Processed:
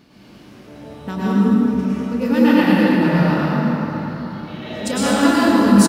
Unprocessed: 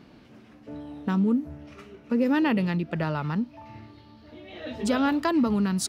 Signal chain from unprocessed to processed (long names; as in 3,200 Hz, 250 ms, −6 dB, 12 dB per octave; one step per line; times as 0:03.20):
high-shelf EQ 4,200 Hz +11.5 dB
double-tracking delay 29 ms −12.5 dB
dense smooth reverb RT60 4 s, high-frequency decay 0.5×, pre-delay 90 ms, DRR −10 dB
level −1.5 dB